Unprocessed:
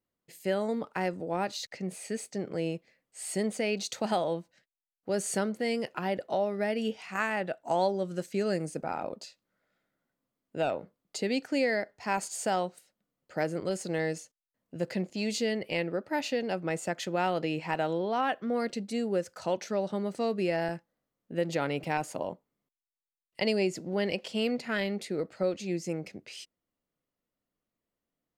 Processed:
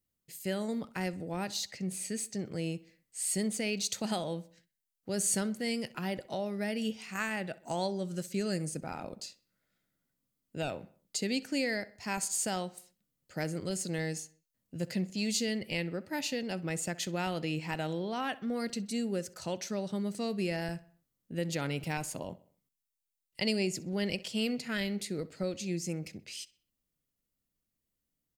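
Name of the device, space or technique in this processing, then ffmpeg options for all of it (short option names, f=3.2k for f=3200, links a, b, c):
smiley-face EQ: -filter_complex "[0:a]lowshelf=f=150:g=8.5,equalizer=f=700:t=o:w=2.6:g=-7.5,highshelf=f=5.1k:g=9,asplit=2[a][b];[b]adelay=64,lowpass=f=4.2k:p=1,volume=-19dB,asplit=2[c][d];[d]adelay=64,lowpass=f=4.2k:p=1,volume=0.49,asplit=2[e][f];[f]adelay=64,lowpass=f=4.2k:p=1,volume=0.49,asplit=2[g][h];[h]adelay=64,lowpass=f=4.2k:p=1,volume=0.49[i];[a][c][e][g][i]amix=inputs=5:normalize=0,volume=-1dB"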